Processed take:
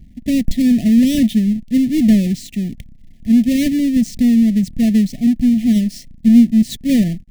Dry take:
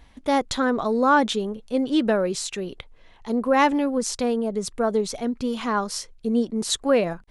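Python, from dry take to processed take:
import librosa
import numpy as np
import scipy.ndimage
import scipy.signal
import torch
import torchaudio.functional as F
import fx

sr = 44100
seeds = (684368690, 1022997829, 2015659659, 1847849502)

y = fx.halfwave_hold(x, sr)
y = fx.brickwall_bandstop(y, sr, low_hz=740.0, high_hz=1700.0)
y = fx.low_shelf_res(y, sr, hz=320.0, db=12.5, q=3.0)
y = y * 10.0 ** (-7.5 / 20.0)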